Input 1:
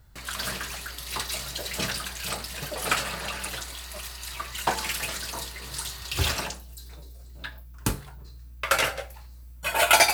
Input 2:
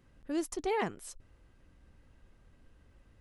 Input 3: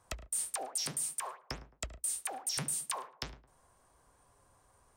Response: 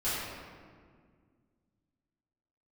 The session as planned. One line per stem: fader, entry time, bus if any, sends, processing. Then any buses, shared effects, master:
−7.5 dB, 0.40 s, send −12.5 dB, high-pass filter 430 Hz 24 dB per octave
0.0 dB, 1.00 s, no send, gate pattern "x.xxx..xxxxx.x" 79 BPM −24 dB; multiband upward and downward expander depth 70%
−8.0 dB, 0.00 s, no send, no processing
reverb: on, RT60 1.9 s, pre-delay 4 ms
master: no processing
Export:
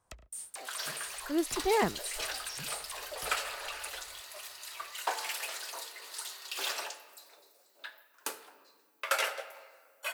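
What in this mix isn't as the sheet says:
stem 1: send −12.5 dB → −19.5 dB
stem 2: missing gate pattern "x.xxx..xxxxx.x" 79 BPM −24 dB

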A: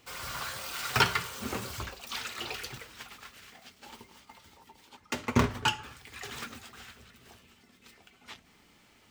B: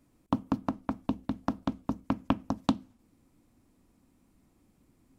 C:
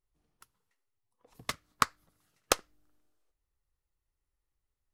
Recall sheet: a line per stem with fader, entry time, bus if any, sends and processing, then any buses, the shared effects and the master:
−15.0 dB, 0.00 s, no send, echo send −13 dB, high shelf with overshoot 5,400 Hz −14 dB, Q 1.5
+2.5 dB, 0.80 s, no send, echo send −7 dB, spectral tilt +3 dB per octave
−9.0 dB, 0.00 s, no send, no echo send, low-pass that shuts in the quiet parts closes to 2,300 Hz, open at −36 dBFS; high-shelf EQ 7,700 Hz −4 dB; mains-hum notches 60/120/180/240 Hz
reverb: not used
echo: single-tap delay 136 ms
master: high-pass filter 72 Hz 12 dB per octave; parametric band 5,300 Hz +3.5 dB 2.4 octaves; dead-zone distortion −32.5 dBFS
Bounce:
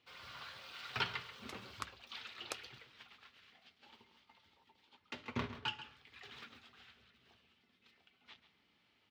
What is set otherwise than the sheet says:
stem B: muted
stem C −9.0 dB → −19.0 dB
master: missing dead-zone distortion −32.5 dBFS

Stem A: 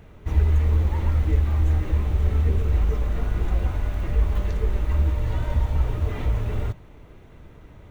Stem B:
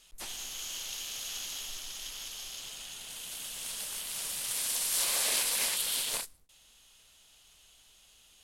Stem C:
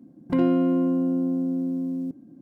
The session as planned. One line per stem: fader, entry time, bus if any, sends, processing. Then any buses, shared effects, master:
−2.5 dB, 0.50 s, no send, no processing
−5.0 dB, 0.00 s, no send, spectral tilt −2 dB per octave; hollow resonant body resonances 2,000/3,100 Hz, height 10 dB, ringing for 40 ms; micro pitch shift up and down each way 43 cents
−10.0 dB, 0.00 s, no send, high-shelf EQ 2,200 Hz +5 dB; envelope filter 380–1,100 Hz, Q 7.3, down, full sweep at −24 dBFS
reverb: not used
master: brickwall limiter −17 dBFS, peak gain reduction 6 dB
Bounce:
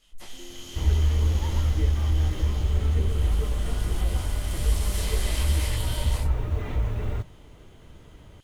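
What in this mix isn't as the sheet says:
stem B −5.0 dB → +2.0 dB
stem C −10.0 dB → −17.5 dB
master: missing brickwall limiter −17 dBFS, peak gain reduction 6 dB

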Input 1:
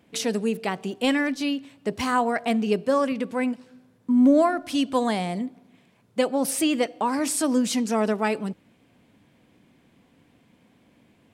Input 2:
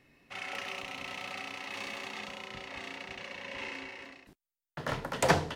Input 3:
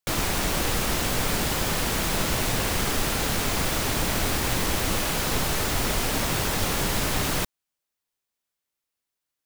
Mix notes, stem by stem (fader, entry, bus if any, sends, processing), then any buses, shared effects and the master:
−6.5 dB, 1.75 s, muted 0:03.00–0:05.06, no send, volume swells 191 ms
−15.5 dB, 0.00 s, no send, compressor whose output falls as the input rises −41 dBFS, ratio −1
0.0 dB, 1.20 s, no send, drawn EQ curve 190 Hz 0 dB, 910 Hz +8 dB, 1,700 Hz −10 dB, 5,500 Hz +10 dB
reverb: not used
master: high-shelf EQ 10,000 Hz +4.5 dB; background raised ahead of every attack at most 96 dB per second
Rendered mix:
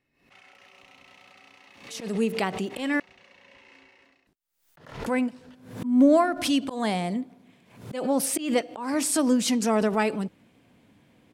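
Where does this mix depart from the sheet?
stem 1 −6.5 dB → 0.0 dB
stem 3: muted
master: missing high-shelf EQ 10,000 Hz +4.5 dB

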